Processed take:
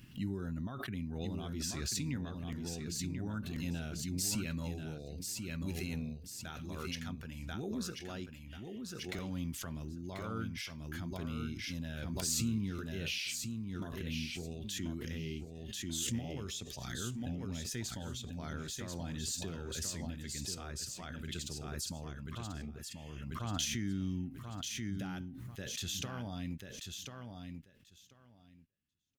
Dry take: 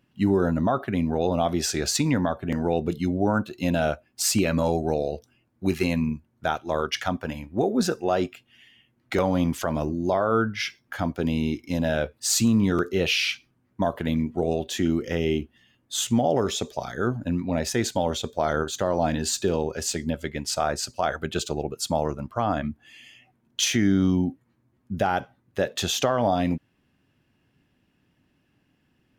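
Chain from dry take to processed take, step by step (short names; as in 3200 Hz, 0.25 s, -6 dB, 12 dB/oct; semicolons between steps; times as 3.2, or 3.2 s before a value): high shelf 9500 Hz +2.5 dB; feedback echo 1.038 s, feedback 17%, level -6 dB; gate -47 dBFS, range -14 dB; passive tone stack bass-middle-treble 6-0-2; backwards sustainer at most 23 dB/s; gain +2 dB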